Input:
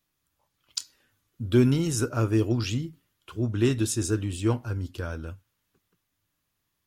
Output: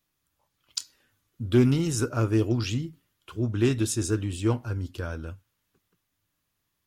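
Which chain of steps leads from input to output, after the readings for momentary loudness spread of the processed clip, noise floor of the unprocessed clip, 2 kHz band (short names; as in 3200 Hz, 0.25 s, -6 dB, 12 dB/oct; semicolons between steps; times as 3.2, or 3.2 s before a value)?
15 LU, -79 dBFS, 0.0 dB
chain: Doppler distortion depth 0.1 ms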